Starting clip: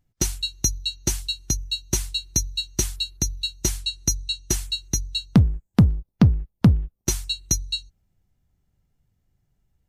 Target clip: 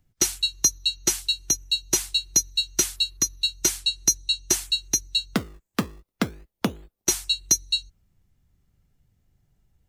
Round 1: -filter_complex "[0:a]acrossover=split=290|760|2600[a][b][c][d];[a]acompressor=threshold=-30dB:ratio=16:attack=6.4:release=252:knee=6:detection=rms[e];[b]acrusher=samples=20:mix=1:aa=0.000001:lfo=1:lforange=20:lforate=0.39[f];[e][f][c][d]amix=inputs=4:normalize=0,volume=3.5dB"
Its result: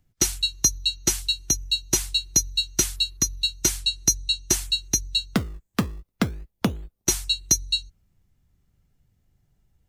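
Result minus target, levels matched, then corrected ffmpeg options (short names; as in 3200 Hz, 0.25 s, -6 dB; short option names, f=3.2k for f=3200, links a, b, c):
compressor: peak gain reduction -10 dB
-filter_complex "[0:a]acrossover=split=290|760|2600[a][b][c][d];[a]acompressor=threshold=-40.5dB:ratio=16:attack=6.4:release=252:knee=6:detection=rms[e];[b]acrusher=samples=20:mix=1:aa=0.000001:lfo=1:lforange=20:lforate=0.39[f];[e][f][c][d]amix=inputs=4:normalize=0,volume=3.5dB"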